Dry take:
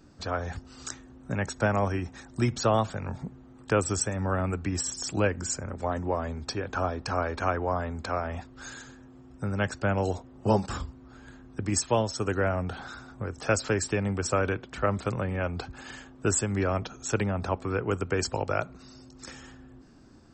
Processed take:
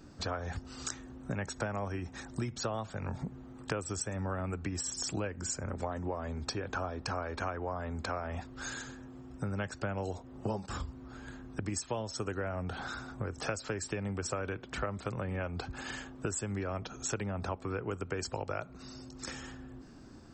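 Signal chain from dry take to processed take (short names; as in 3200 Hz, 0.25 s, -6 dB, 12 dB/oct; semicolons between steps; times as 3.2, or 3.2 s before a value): compressor 6:1, threshold -35 dBFS, peak gain reduction 16 dB; gain +2 dB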